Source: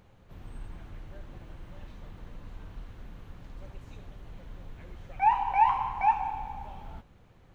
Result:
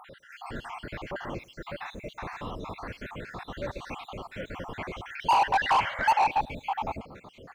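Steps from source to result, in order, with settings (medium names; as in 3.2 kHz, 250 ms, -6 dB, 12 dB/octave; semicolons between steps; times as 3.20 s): random holes in the spectrogram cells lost 62%; overdrive pedal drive 31 dB, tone 2.3 kHz, clips at -13 dBFS; feedback delay 106 ms, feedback 24%, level -23 dB; painted sound noise, 5.80–6.20 s, 500–2300 Hz -36 dBFS; trim -1 dB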